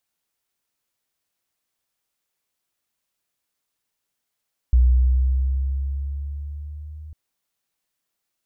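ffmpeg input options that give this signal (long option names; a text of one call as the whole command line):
ffmpeg -f lavfi -i "aevalsrc='pow(10,(-10.5-24.5*t/2.4)/20)*sin(2*PI*61.3*2.4/(4*log(2)/12)*(exp(4*log(2)/12*t/2.4)-1))':duration=2.4:sample_rate=44100" out.wav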